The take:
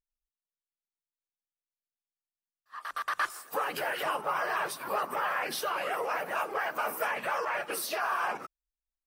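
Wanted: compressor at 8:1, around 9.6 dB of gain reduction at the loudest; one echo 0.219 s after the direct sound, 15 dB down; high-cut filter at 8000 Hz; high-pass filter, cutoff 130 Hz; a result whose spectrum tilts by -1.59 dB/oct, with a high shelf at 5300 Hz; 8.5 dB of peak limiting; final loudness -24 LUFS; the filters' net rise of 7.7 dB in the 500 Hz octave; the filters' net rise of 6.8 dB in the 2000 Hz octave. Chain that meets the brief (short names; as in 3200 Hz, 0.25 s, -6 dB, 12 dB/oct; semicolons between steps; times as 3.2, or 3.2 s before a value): HPF 130 Hz; LPF 8000 Hz; bell 500 Hz +9 dB; bell 2000 Hz +9 dB; high shelf 5300 Hz -5 dB; compressor 8:1, threshold -30 dBFS; limiter -28.5 dBFS; echo 0.219 s -15 dB; gain +13 dB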